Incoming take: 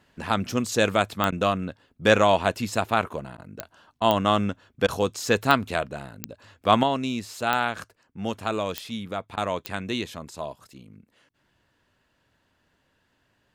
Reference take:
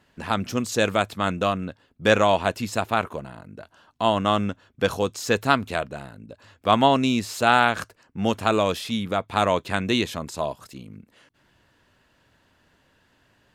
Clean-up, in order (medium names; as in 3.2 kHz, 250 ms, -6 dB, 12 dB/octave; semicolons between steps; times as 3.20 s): de-click; interpolate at 1.31/3.37/4.00/4.87/9.36 s, 12 ms; gain correction +6.5 dB, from 6.83 s